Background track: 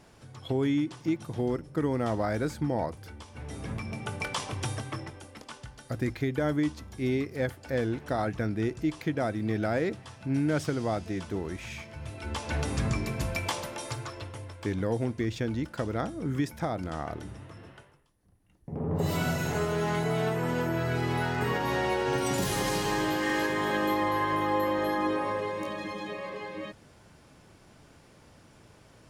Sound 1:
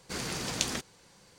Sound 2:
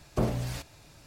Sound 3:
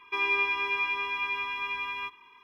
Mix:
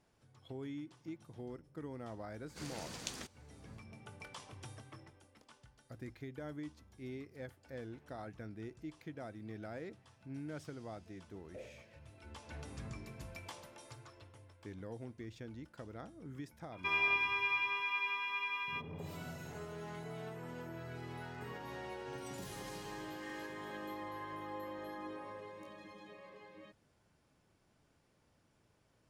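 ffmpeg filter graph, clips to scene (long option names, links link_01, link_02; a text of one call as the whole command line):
ffmpeg -i bed.wav -i cue0.wav -i cue1.wav -i cue2.wav -filter_complex "[0:a]volume=-17.5dB[link_01];[2:a]asplit=3[link_02][link_03][link_04];[link_02]bandpass=frequency=530:width_type=q:width=8,volume=0dB[link_05];[link_03]bandpass=frequency=1840:width_type=q:width=8,volume=-6dB[link_06];[link_04]bandpass=frequency=2480:width_type=q:width=8,volume=-9dB[link_07];[link_05][link_06][link_07]amix=inputs=3:normalize=0[link_08];[3:a]highpass=frequency=500:poles=1[link_09];[1:a]atrim=end=1.38,asetpts=PTS-STARTPTS,volume=-12.5dB,afade=type=in:duration=0.004:curve=hsin,afade=type=out:start_time=1.376:duration=0.004:curve=hsin,adelay=2460[link_10];[link_08]atrim=end=1.06,asetpts=PTS-STARTPTS,volume=-11dB,afade=type=in:duration=0.004:curve=hsin,afade=type=out:start_time=1.056:duration=0.004:curve=hsin,adelay=11370[link_11];[link_09]atrim=end=2.43,asetpts=PTS-STARTPTS,volume=-5dB,afade=type=in:duration=0.004:curve=hsin,afade=type=out:start_time=2.426:duration=0.004:curve=hsin,adelay=16720[link_12];[link_01][link_10][link_11][link_12]amix=inputs=4:normalize=0" out.wav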